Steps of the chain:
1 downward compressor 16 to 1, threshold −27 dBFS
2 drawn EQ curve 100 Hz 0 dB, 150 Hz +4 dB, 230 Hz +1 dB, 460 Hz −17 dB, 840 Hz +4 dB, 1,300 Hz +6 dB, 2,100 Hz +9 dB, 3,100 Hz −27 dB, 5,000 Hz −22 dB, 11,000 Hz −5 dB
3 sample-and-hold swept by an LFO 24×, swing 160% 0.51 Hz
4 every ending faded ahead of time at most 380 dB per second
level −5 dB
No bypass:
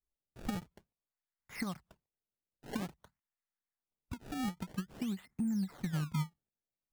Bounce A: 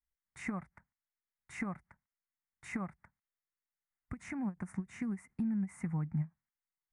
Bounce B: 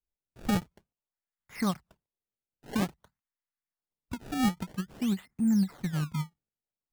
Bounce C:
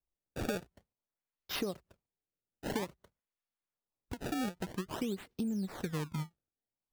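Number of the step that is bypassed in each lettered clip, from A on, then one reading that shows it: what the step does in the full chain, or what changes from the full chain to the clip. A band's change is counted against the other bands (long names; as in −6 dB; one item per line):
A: 3, distortion level −5 dB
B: 1, average gain reduction 5.5 dB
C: 2, 500 Hz band +8.0 dB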